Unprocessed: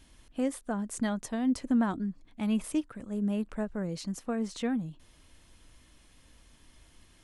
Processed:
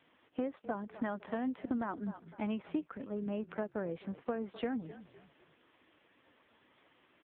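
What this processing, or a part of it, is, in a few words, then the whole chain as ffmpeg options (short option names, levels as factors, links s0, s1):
voicemail: -filter_complex "[0:a]asplit=3[s0][s1][s2];[s0]afade=t=out:st=0.83:d=0.02[s3];[s1]lowpass=f=8000:w=0.5412,lowpass=f=8000:w=1.3066,afade=t=in:st=0.83:d=0.02,afade=t=out:st=2.07:d=0.02[s4];[s2]afade=t=in:st=2.07:d=0.02[s5];[s3][s4][s5]amix=inputs=3:normalize=0,highshelf=f=3800:g=-3.5,asplit=4[s6][s7][s8][s9];[s7]adelay=254,afreqshift=-35,volume=0.112[s10];[s8]adelay=508,afreqshift=-70,volume=0.0473[s11];[s9]adelay=762,afreqshift=-105,volume=0.0197[s12];[s6][s10][s11][s12]amix=inputs=4:normalize=0,highpass=330,lowpass=2800,acompressor=threshold=0.0178:ratio=12,volume=1.68" -ar 8000 -c:a libopencore_amrnb -b:a 5900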